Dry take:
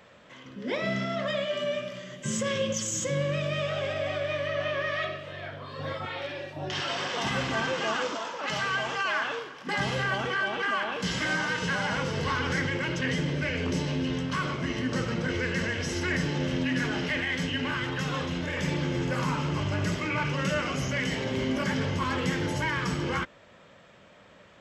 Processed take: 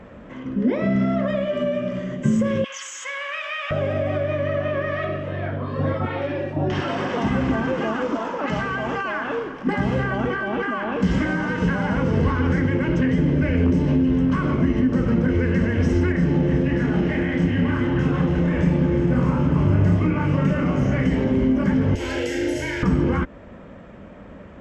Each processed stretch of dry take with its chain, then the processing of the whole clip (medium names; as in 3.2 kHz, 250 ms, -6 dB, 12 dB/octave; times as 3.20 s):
2.64–3.71 s: high-pass 960 Hz 24 dB/octave + peaking EQ 2.5 kHz +8 dB 1.9 oct
16.12–21.06 s: flange 1.8 Hz, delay 2.6 ms, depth 4.7 ms, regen -69% + doubling 29 ms -4 dB + echo whose repeats swap between lows and highs 183 ms, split 900 Hz, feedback 53%, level -3.5 dB
21.95–22.83 s: tilt EQ +3.5 dB/octave + static phaser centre 460 Hz, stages 4 + flutter echo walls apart 6.4 m, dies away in 0.61 s
whole clip: graphic EQ 125/250/4000 Hz -8/+6/-8 dB; compression, threshold -31 dBFS; RIAA curve playback; trim +8.5 dB